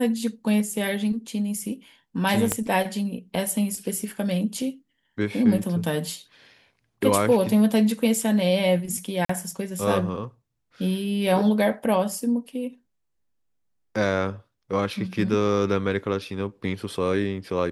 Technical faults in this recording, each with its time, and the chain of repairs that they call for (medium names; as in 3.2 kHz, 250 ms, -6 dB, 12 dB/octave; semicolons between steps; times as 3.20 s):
2.52 s: pop -7 dBFS
9.25–9.29 s: dropout 44 ms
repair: de-click; interpolate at 9.25 s, 44 ms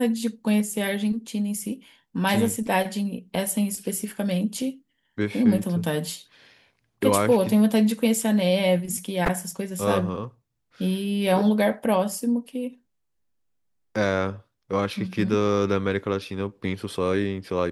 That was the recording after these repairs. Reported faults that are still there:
2.52 s: pop